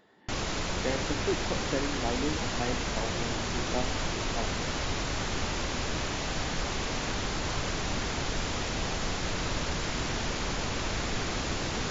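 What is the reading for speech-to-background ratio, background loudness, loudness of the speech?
-5.0 dB, -32.0 LUFS, -37.0 LUFS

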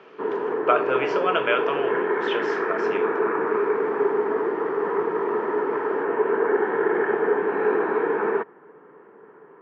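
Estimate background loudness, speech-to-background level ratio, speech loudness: -24.0 LUFS, -3.0 dB, -27.0 LUFS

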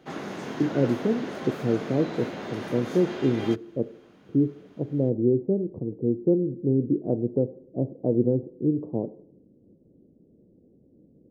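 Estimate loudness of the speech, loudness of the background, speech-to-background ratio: -26.5 LUFS, -35.5 LUFS, 9.0 dB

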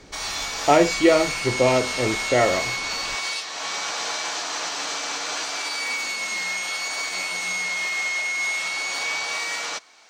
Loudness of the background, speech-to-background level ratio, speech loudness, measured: -25.5 LUFS, 4.5 dB, -21.0 LUFS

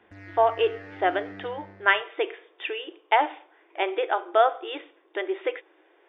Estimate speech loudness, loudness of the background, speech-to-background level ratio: -26.5 LUFS, -43.5 LUFS, 17.0 dB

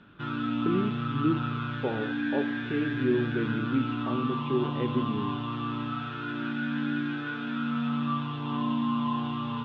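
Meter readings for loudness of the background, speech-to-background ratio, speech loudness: -31.0 LUFS, -1.0 dB, -32.0 LUFS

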